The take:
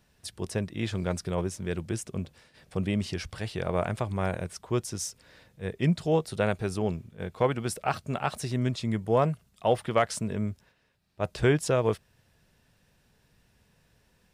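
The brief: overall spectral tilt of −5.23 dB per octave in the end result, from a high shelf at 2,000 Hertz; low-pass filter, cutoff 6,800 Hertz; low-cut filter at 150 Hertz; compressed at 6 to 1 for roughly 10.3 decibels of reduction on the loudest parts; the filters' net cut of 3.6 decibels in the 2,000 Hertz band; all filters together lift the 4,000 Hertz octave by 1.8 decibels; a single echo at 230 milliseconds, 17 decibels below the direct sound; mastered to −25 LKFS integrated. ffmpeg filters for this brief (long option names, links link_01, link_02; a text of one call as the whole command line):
ffmpeg -i in.wav -af "highpass=150,lowpass=6800,highshelf=frequency=2000:gain=-4,equalizer=frequency=2000:width_type=o:gain=-4.5,equalizer=frequency=4000:width_type=o:gain=8.5,acompressor=threshold=-30dB:ratio=6,aecho=1:1:230:0.141,volume=12dB" out.wav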